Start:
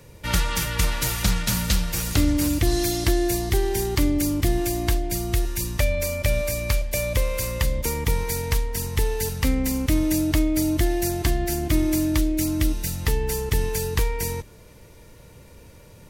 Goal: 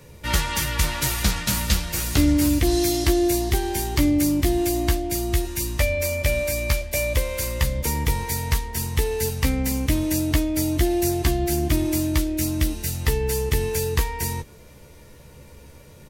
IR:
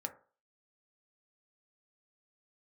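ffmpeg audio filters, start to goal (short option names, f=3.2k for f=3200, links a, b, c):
-filter_complex "[0:a]asplit=2[a][b];[b]adelay=14,volume=-4.5dB[c];[a][c]amix=inputs=2:normalize=0"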